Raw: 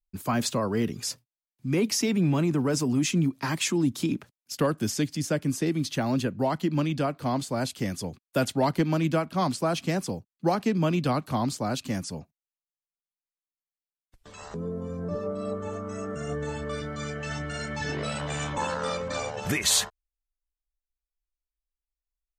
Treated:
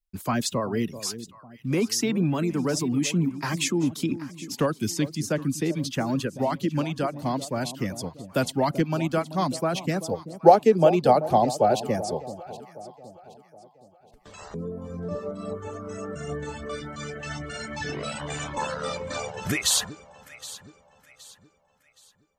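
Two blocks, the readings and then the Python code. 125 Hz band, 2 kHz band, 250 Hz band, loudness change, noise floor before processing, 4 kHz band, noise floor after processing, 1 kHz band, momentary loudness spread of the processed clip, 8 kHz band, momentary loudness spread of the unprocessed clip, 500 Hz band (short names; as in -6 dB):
-0.5 dB, 0.0 dB, 0.0 dB, +2.0 dB, under -85 dBFS, +0.5 dB, -60 dBFS, +5.5 dB, 16 LU, +0.5 dB, 10 LU, +5.0 dB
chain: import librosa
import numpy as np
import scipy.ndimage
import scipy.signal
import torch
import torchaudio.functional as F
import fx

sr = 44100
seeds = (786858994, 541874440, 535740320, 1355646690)

y = fx.dereverb_blind(x, sr, rt60_s=0.84)
y = fx.spec_box(y, sr, start_s=10.12, length_s=2.84, low_hz=350.0, high_hz=900.0, gain_db=12)
y = fx.echo_alternate(y, sr, ms=385, hz=890.0, feedback_pct=60, wet_db=-12.5)
y = F.gain(torch.from_numpy(y), 1.0).numpy()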